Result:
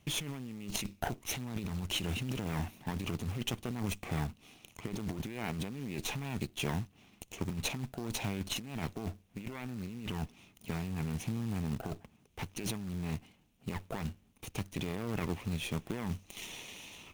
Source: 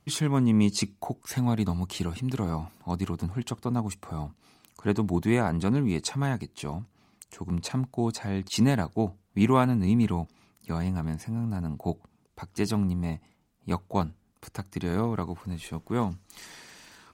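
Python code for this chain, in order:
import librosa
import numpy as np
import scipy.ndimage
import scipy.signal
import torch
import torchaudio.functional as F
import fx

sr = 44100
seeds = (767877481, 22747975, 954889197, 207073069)

y = fx.lower_of_two(x, sr, delay_ms=0.31)
y = fx.peak_eq(y, sr, hz=2600.0, db=6.5, octaves=0.82)
y = fx.over_compress(y, sr, threshold_db=-33.0, ratio=-1.0)
y = fx.quant_float(y, sr, bits=2)
y = y * 10.0 ** (-4.0 / 20.0)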